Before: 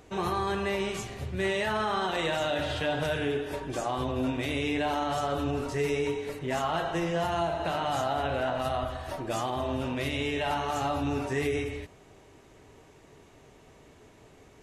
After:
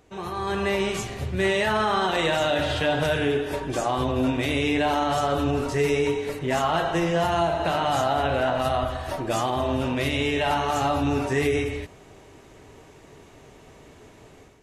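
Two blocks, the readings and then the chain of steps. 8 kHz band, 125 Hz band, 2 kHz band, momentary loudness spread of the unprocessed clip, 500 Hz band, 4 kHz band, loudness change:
+6.0 dB, +6.0 dB, +6.0 dB, 4 LU, +6.0 dB, +6.0 dB, +6.0 dB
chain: level rider gain up to 10.5 dB; trim -4.5 dB

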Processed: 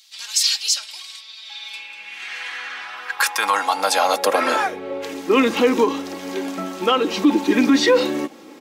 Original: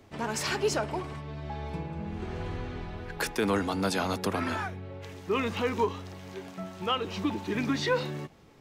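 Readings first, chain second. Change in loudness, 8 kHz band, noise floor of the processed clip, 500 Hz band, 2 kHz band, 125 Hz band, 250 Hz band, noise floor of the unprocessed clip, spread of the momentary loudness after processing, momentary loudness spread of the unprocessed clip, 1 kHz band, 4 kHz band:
+12.0 dB, +15.5 dB, -42 dBFS, +10.5 dB, +11.0 dB, no reading, +11.5 dB, -52 dBFS, 16 LU, 13 LU, +11.5 dB, +14.0 dB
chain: treble shelf 3.4 kHz +5.5 dB; in parallel at -0.5 dB: gain riding within 3 dB 0.5 s; on the sum: comb 3.7 ms, depth 48%; high-pass sweep 4 kHz -> 310 Hz, 1.29–5.19 s; loudness maximiser +9.5 dB; trim -5.5 dB

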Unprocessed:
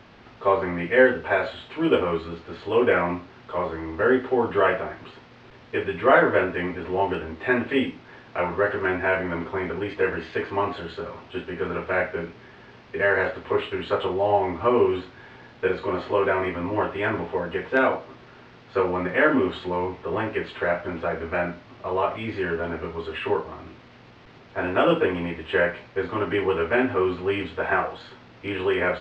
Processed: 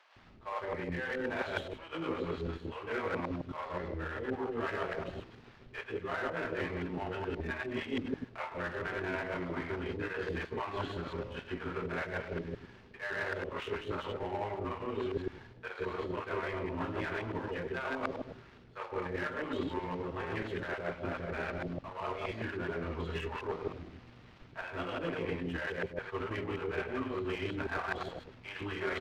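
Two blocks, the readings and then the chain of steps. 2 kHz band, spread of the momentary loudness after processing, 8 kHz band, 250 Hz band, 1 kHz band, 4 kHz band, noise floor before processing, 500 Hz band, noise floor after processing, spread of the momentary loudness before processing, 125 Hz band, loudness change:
-12.5 dB, 7 LU, no reading, -11.5 dB, -13.0 dB, -9.5 dB, -49 dBFS, -14.5 dB, -56 dBFS, 12 LU, -6.5 dB, -13.0 dB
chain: chunks repeated in reverse 105 ms, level -2 dB; bass shelf 88 Hz +10.5 dB; reverse; compression 6:1, threshold -28 dBFS, peak gain reduction 16.5 dB; reverse; power-law waveshaper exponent 1.4; bands offset in time highs, lows 160 ms, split 600 Hz

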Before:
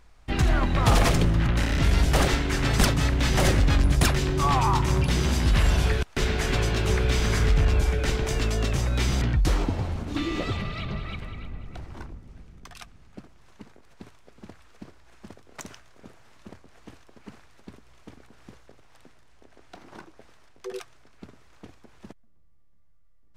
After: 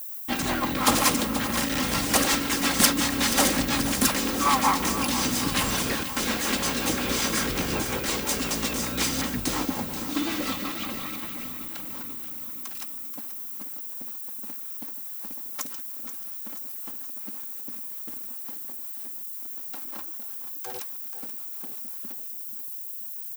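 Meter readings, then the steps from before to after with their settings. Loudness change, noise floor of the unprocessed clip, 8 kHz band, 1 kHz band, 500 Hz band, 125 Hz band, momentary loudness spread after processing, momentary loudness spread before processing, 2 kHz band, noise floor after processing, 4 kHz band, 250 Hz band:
-2.5 dB, -52 dBFS, +8.5 dB, +2.0 dB, -2.5 dB, -13.0 dB, 12 LU, 18 LU, +1.5 dB, -37 dBFS, +4.0 dB, +1.5 dB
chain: comb filter that takes the minimum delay 3.7 ms; graphic EQ 125/250/1000 Hz +5/+9/+7 dB; rotary cabinet horn 5.5 Hz; added noise violet -55 dBFS; RIAA curve recording; feedback delay 482 ms, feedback 59%, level -12 dB

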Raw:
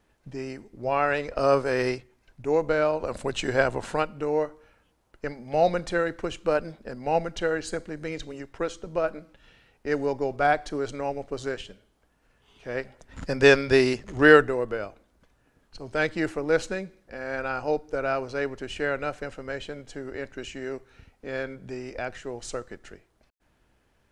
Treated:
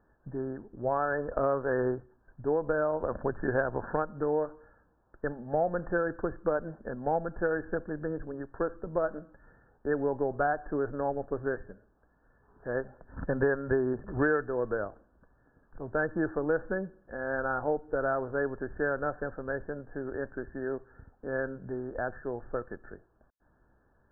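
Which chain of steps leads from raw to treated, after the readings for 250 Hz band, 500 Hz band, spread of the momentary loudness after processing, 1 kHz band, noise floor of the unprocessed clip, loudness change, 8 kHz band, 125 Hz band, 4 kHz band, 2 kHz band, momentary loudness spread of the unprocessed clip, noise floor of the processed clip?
-4.0 dB, -5.0 dB, 10 LU, -5.0 dB, -68 dBFS, -5.5 dB, under -35 dB, -3.0 dB, under -40 dB, -7.5 dB, 16 LU, -68 dBFS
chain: brick-wall FIR low-pass 1.8 kHz; compression 6:1, threshold -24 dBFS, peak gain reduction 13.5 dB

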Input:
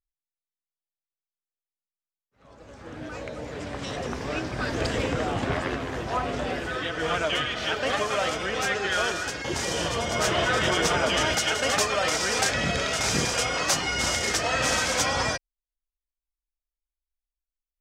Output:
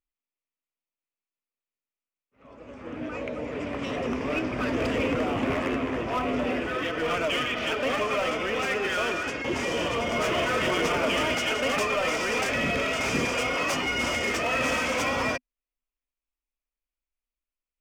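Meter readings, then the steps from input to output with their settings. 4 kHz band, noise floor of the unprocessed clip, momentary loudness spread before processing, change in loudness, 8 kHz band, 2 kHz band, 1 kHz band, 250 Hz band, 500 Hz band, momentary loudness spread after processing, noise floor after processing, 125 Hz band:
-4.0 dB, under -85 dBFS, 10 LU, -1.0 dB, -9.5 dB, -0.5 dB, -1.0 dB, +3.0 dB, +1.0 dB, 7 LU, under -85 dBFS, -4.0 dB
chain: tone controls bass -7 dB, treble -14 dB; in parallel at -4.5 dB: wavefolder -28 dBFS; on the sum: graphic EQ with 31 bands 250 Hz +8 dB, 800 Hz -6 dB, 1.6 kHz -7 dB, 2.5 kHz +5 dB, 4 kHz -8 dB

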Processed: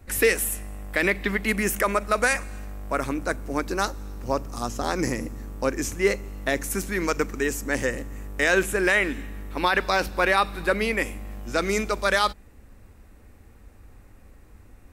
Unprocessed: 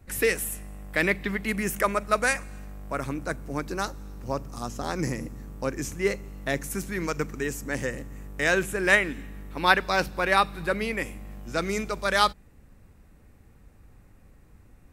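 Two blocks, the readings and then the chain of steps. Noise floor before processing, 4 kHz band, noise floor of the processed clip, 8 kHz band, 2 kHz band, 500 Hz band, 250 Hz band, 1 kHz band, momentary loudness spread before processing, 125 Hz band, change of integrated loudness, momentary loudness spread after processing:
-55 dBFS, +1.0 dB, -51 dBFS, +4.0 dB, +2.0 dB, +3.5 dB, +2.5 dB, +1.0 dB, 13 LU, +0.5 dB, +2.0 dB, 10 LU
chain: peaking EQ 150 Hz -11.5 dB 0.48 oct; peak limiter -14.5 dBFS, peak gain reduction 12 dB; trim +5 dB

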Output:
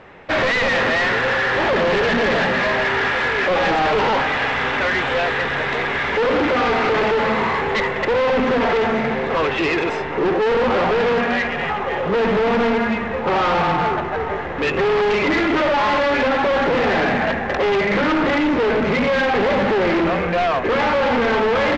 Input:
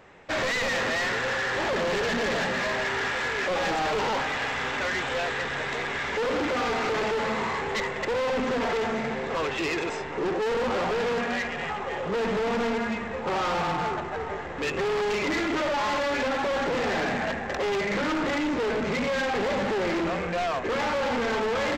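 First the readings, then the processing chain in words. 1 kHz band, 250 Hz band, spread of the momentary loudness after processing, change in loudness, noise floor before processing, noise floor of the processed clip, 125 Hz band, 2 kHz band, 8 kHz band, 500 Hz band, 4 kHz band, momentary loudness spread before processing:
+9.0 dB, +9.0 dB, 4 LU, +8.5 dB, -33 dBFS, -24 dBFS, +9.0 dB, +8.5 dB, no reading, +9.0 dB, +6.5 dB, 4 LU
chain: low-pass 3.7 kHz 12 dB/octave; trim +9 dB

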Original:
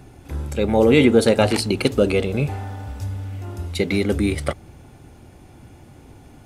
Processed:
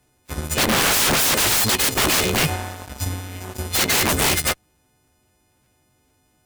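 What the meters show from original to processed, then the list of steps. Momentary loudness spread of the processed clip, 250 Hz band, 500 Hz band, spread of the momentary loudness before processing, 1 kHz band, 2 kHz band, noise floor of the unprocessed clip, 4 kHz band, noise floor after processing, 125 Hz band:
16 LU, -7.5 dB, -8.5 dB, 17 LU, +5.0 dB, +6.5 dB, -46 dBFS, +9.5 dB, -64 dBFS, -3.5 dB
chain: partials quantised in pitch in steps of 3 st; integer overflow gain 16.5 dB; Chebyshev shaper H 7 -16 dB, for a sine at -16.5 dBFS; trim +3.5 dB

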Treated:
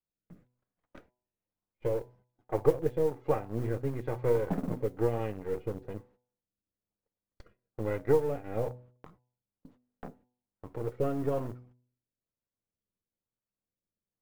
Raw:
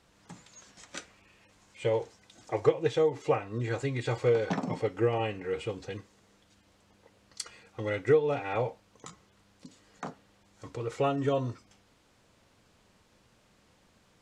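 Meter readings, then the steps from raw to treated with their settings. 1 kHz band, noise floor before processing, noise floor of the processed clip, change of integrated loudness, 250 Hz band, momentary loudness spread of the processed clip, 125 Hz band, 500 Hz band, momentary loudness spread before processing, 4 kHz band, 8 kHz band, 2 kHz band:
-5.0 dB, -65 dBFS, under -85 dBFS, -2.0 dB, -0.5 dB, 18 LU, -1.0 dB, -2.0 dB, 17 LU, under -10 dB, under -10 dB, -9.5 dB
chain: partial rectifier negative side -7 dB; rotary cabinet horn 1.1 Hz; in parallel at -5.5 dB: word length cut 6-bit, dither none; on the sum: Bessel low-pass 960 Hz, order 2; modulation noise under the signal 31 dB; gate -58 dBFS, range -27 dB; de-hum 123.7 Hz, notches 8

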